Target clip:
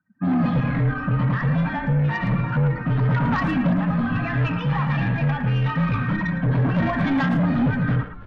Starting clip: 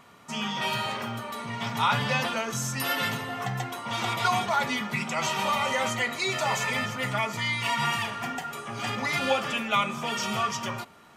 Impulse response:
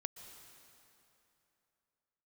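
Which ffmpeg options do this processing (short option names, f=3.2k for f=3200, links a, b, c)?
-filter_complex "[0:a]afftdn=nr=32:nf=-40,lowpass=f=1.5k:w=0.5412,lowpass=f=1.5k:w=1.3066,acompressor=threshold=-30dB:ratio=10,lowshelf=f=230:t=q:w=3:g=11,dynaudnorm=f=150:g=5:m=15dB,aphaser=in_gain=1:out_gain=1:delay=1.6:decay=0.5:speed=0.21:type=sinusoidal,aresample=11025,asoftclip=type=tanh:threshold=-10.5dB,aresample=44100,afreqshift=-22,asplit=2[a][b];[b]asplit=3[c][d][e];[c]adelay=452,afreqshift=-130,volume=-17.5dB[f];[d]adelay=904,afreqshift=-260,volume=-25.7dB[g];[e]adelay=1356,afreqshift=-390,volume=-33.9dB[h];[f][g][h]amix=inputs=3:normalize=0[i];[a][i]amix=inputs=2:normalize=0,asetrate=59535,aresample=44100,asplit=2[j][k];[k]adelay=110,highpass=300,lowpass=3.4k,asoftclip=type=hard:threshold=-13.5dB,volume=-8dB[l];[j][l]amix=inputs=2:normalize=0,volume=-6dB"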